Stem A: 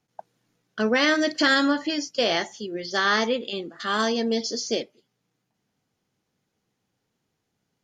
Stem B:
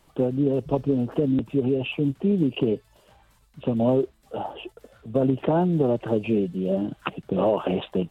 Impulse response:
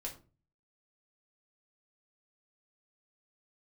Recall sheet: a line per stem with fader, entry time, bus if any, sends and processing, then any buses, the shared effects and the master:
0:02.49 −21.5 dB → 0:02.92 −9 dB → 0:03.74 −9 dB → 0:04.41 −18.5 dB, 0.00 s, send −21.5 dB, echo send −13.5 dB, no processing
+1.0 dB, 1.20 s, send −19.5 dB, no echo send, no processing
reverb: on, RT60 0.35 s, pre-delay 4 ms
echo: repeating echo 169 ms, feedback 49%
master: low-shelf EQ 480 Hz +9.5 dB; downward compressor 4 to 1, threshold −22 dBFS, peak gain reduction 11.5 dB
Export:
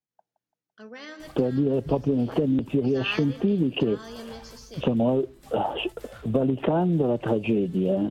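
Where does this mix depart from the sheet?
stem B +1.0 dB → +10.0 dB
master: missing low-shelf EQ 480 Hz +9.5 dB

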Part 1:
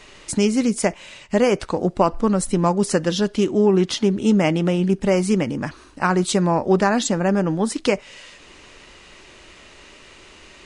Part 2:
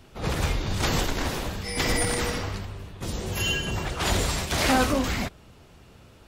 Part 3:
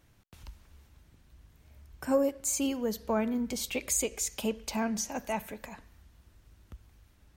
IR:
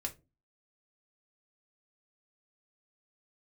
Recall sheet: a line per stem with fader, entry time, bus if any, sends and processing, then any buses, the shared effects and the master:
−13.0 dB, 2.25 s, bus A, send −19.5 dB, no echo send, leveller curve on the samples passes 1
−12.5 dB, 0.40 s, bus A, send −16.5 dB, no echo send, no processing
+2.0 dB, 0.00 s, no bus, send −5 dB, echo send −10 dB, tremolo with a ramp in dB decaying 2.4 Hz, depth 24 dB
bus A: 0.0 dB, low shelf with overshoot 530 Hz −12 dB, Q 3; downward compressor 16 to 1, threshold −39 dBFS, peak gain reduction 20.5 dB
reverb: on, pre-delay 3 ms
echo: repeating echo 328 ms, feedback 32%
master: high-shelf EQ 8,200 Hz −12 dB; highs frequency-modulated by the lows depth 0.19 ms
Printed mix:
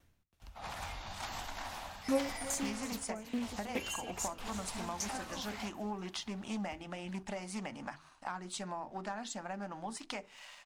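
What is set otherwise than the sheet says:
stem 3 +2.0 dB → −6.0 dB
master: missing high-shelf EQ 8,200 Hz −12 dB

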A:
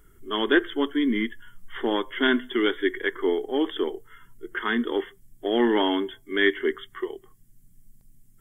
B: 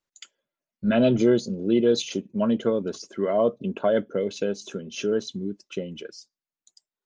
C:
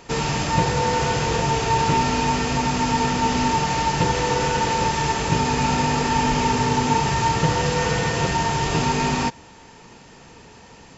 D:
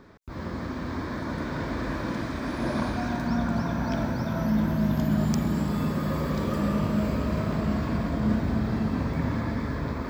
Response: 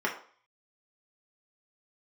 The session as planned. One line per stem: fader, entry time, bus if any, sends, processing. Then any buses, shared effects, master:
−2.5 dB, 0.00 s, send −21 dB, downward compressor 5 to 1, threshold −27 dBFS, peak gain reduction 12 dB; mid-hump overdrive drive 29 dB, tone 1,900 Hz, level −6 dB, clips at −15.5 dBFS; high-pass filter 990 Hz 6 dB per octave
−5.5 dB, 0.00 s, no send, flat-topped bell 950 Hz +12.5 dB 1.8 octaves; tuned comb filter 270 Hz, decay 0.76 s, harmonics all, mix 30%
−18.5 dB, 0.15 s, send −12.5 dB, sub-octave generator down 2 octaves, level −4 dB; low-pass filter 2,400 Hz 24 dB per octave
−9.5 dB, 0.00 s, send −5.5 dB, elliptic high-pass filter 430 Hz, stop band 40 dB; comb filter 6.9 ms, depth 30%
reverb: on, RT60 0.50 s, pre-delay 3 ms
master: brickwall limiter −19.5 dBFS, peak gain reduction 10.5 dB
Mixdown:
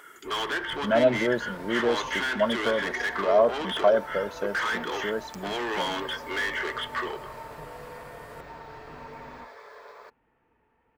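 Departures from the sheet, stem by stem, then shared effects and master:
stem C −18.5 dB → −26.0 dB
stem D: send off
master: missing brickwall limiter −19.5 dBFS, peak gain reduction 10.5 dB

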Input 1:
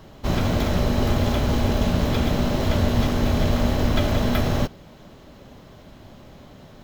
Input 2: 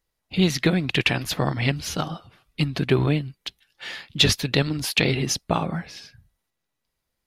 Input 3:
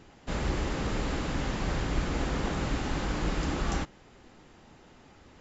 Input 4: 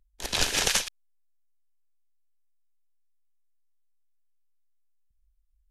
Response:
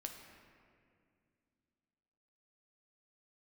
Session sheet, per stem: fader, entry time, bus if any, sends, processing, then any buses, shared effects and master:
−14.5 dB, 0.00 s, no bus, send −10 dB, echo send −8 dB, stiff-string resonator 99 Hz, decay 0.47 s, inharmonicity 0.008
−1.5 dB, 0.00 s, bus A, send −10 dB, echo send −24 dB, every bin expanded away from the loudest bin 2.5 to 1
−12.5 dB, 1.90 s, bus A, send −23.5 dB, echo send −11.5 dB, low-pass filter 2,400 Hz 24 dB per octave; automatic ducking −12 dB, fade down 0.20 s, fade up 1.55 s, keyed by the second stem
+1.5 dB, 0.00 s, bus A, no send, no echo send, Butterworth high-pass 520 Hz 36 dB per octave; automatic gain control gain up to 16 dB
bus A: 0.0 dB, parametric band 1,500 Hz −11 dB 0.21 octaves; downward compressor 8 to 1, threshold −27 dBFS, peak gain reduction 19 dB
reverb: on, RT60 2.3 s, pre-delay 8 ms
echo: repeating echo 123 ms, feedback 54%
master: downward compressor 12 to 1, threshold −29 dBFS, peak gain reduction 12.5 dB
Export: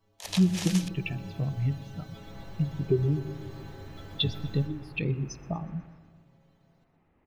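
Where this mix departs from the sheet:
stem 4 +1.5 dB → −5.0 dB
master: missing downward compressor 12 to 1, threshold −29 dBFS, peak gain reduction 12.5 dB

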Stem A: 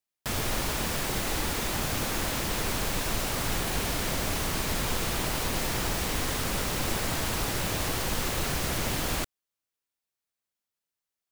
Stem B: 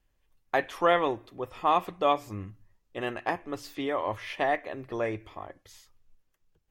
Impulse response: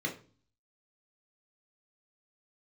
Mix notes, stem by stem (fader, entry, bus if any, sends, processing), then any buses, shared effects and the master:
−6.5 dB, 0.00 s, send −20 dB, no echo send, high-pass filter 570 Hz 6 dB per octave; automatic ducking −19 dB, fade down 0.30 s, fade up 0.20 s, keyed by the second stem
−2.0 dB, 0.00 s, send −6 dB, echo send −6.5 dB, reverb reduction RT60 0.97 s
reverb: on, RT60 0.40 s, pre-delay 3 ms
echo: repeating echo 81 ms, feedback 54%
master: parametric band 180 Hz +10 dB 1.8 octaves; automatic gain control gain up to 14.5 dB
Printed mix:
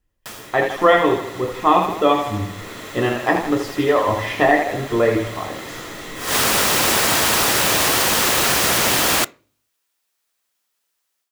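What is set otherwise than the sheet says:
stem A −6.5 dB → +1.5 dB
master: missing parametric band 180 Hz +10 dB 1.8 octaves

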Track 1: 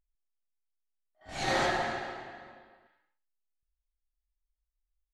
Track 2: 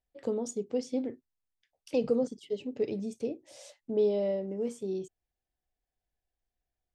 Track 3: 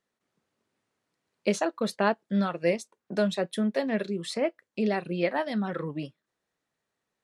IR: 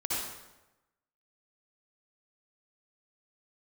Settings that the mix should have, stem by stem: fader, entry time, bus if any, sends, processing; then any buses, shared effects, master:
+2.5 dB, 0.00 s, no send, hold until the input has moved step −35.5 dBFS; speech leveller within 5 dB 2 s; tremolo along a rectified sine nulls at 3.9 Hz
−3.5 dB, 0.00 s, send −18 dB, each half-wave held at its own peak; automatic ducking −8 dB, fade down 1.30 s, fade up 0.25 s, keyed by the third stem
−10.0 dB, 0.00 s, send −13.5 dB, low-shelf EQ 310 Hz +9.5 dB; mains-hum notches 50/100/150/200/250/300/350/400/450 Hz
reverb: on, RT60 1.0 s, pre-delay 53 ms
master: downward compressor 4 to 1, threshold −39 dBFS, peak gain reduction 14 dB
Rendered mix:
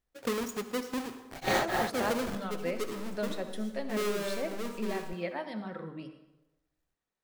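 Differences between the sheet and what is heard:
stem 3: missing low-shelf EQ 310 Hz +9.5 dB
master: missing downward compressor 4 to 1, threshold −39 dBFS, peak gain reduction 14 dB

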